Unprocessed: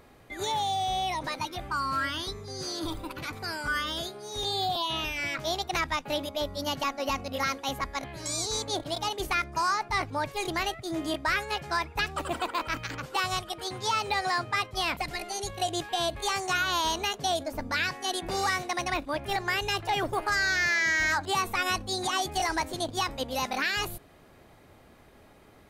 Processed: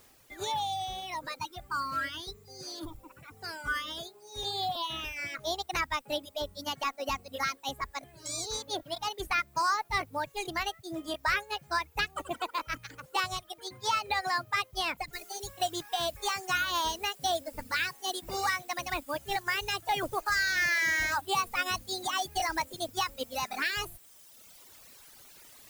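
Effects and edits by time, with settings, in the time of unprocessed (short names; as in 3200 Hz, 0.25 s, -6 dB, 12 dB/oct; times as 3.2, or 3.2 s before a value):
2.85–3.39 tape spacing loss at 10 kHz 31 dB
15.13 noise floor step -52 dB -42 dB
whole clip: reverb removal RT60 1.8 s; bell 190 Hz -3 dB 1 oct; upward expander 1.5:1, over -42 dBFS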